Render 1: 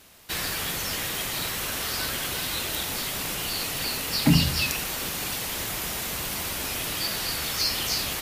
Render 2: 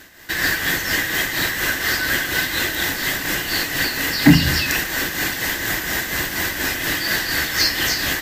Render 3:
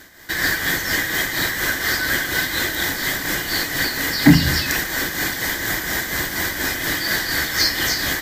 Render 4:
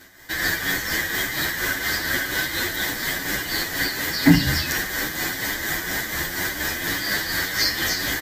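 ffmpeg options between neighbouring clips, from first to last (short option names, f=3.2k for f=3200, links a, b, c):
-af "tremolo=f=4.2:d=0.5,superequalizer=6b=2:11b=3.55:16b=0.447,acontrast=66,volume=1.5dB"
-af "bandreject=f=2.7k:w=5.3"
-filter_complex "[0:a]asplit=2[a][b];[b]adelay=9,afreqshift=1.9[c];[a][c]amix=inputs=2:normalize=1"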